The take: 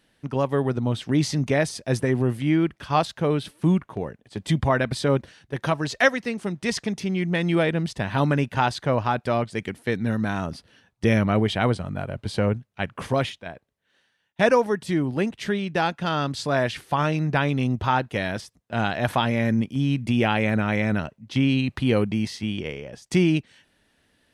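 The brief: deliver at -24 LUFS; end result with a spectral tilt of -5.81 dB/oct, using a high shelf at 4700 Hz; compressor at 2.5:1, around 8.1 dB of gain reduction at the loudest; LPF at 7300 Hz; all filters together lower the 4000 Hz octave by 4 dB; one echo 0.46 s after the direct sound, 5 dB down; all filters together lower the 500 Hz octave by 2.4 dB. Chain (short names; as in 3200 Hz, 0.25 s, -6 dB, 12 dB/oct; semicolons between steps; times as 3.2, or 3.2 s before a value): LPF 7300 Hz; bell 500 Hz -3 dB; bell 4000 Hz -8 dB; high shelf 4700 Hz +6 dB; compressor 2.5:1, threshold -28 dBFS; echo 0.46 s -5 dB; gain +6 dB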